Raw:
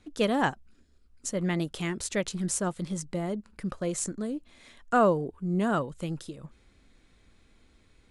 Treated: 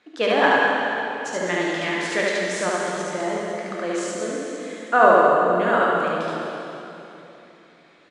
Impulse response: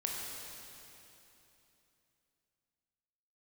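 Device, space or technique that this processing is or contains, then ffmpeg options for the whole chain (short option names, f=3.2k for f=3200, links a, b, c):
station announcement: -filter_complex "[0:a]highpass=430,lowpass=4.1k,equalizer=f=1.7k:t=o:w=0.29:g=5,aecho=1:1:72.89|212.8:0.891|0.282[a];[1:a]atrim=start_sample=2205[b];[a][b]afir=irnorm=-1:irlink=0,volume=6.5dB"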